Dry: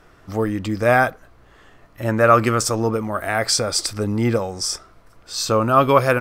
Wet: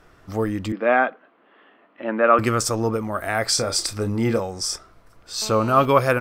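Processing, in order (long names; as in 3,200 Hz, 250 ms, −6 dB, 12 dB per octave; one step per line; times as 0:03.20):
0:00.72–0:02.39: elliptic band-pass filter 230–3,100 Hz, stop band 40 dB
0:03.54–0:04.40: double-tracking delay 31 ms −9.5 dB
0:05.42–0:05.85: phone interference −35 dBFS
level −2 dB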